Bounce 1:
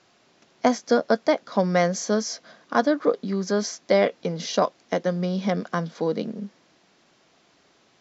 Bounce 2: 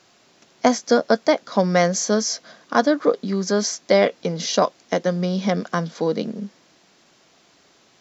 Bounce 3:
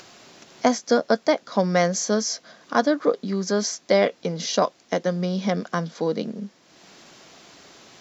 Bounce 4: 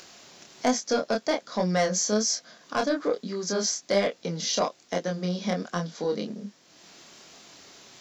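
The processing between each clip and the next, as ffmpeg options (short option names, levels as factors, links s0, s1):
-af "highshelf=f=6500:g=9.5,volume=1.41"
-af "acompressor=mode=upward:threshold=0.0178:ratio=2.5,volume=0.75"
-af "acontrast=85,flanger=delay=22.5:depth=6.4:speed=1.2,highshelf=f=3900:g=7.5,volume=0.376"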